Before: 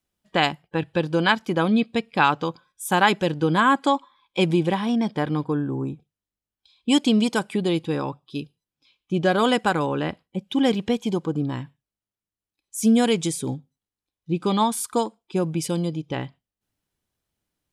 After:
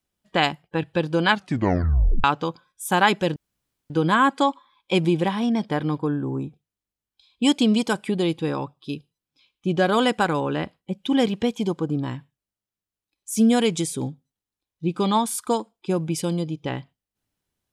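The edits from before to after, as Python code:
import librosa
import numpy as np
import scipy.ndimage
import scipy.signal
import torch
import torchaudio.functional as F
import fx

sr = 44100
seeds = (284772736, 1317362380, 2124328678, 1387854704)

y = fx.edit(x, sr, fx.tape_stop(start_s=1.3, length_s=0.94),
    fx.insert_room_tone(at_s=3.36, length_s=0.54), tone=tone)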